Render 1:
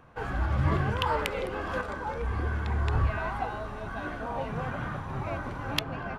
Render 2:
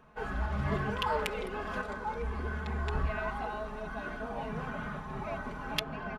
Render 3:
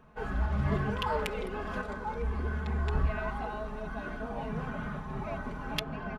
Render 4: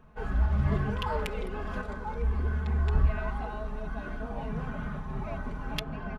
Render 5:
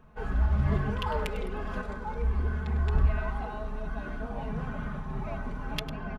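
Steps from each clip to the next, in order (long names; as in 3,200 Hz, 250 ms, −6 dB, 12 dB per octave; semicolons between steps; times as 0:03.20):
comb filter 4.7 ms, depth 84%; level −5.5 dB
low-shelf EQ 380 Hz +5.5 dB; level −1.5 dB
low-shelf EQ 110 Hz +8.5 dB; level −1.5 dB
single-tap delay 101 ms −13.5 dB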